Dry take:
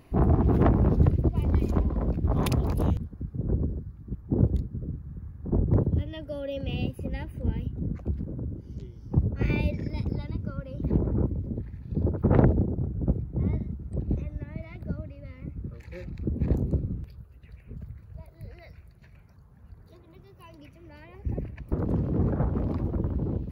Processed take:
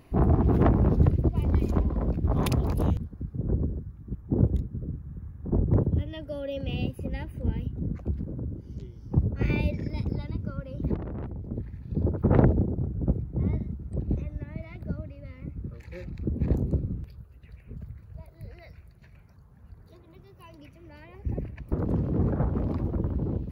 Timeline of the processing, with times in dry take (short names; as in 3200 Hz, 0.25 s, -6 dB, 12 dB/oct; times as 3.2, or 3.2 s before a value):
3.38–6.1 notch 4500 Hz, Q 5.3
10.94–11.52 tube stage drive 32 dB, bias 0.65